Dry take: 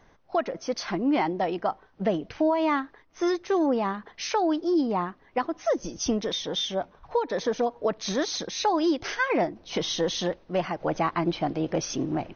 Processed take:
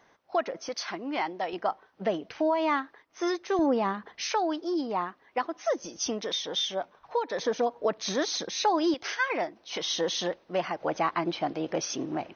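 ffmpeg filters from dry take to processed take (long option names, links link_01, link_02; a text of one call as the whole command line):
ffmpeg -i in.wav -af "asetnsamples=nb_out_samples=441:pad=0,asendcmd='0.69 highpass f 990;1.53 highpass f 440;3.59 highpass f 150;4.21 highpass f 570;7.39 highpass f 270;8.94 highpass f 930;9.9 highpass f 410',highpass=frequency=440:poles=1" out.wav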